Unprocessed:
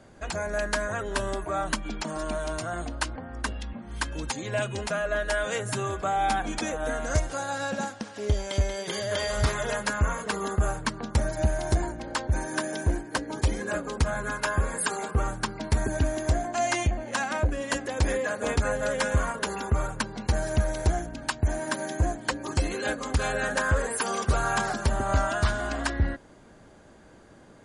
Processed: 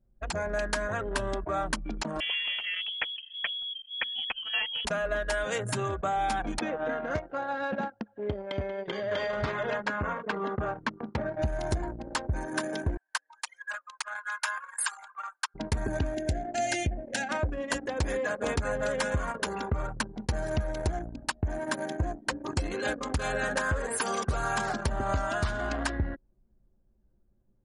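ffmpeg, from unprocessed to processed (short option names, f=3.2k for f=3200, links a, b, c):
-filter_complex "[0:a]asettb=1/sr,asplit=3[a][b][c];[a]atrim=end=2.204[d];[b]atrim=start=2.2:end=4.85,asetpts=PTS-STARTPTS,afade=t=in:d=0.004:c=qsin,afade=t=out:st=2.646:d=0.004:c=qsin,lowpass=f=2.9k:t=q:w=0.5098,lowpass=f=2.9k:t=q:w=0.6013,lowpass=f=2.9k:t=q:w=0.9,lowpass=f=2.9k:t=q:w=2.563,afreqshift=-3400[e];[c]atrim=start=4.846[f];[d][e]acrossfade=d=0.004:c1=hsin:c2=qsin[g];[g][f]acrossfade=d=0.004:c1=qsin:c2=hsin,asettb=1/sr,asplit=3[h][i][j];[h]atrim=end=6.594[k];[i]atrim=start=6.59:end=11.42,asetpts=PTS-STARTPTS,afade=t=in:d=0.004:c=qsin,afade=t=out:st=4.826:d=0.004:c=qsin,highpass=140,lowpass=3.2k[l];[j]atrim=start=11.416[m];[k][l]acrossfade=d=0.004:c1=hsin:c2=qsin[n];[n][m]acrossfade=d=0.004:c1=qsin:c2=hsin,asettb=1/sr,asplit=3[o][p][q];[o]atrim=end=12.974[r];[p]atrim=start=12.97:end=15.55,asetpts=PTS-STARTPTS,afade=t=in:d=0.004:c=qsin,afade=t=out:st=2.576:d=0.004:c=qsin,highpass=f=960:w=0.5412,highpass=f=960:w=1.3066[s];[q]atrim=start=15.546[t];[r][s]acrossfade=d=0.004:c1=hsin:c2=qsin[u];[u][t]acrossfade=d=0.004:c1=qsin:c2=hsin,asettb=1/sr,asplit=3[v][w][x];[v]atrim=end=16.144[y];[w]atrim=start=16.14:end=17.29,asetpts=PTS-STARTPTS,afade=t=in:d=0.004:c=qsin,afade=t=out:st=1.146:d=0.004:c=qsin,asuperstop=centerf=1100:order=4:qfactor=1.4[z];[x]atrim=start=17.286[aa];[y][z]acrossfade=d=0.004:c1=hsin:c2=qsin[ab];[ab][aa]acrossfade=d=0.004:c1=qsin:c2=hsin,anlmdn=10,acompressor=threshold=-25dB:ratio=6"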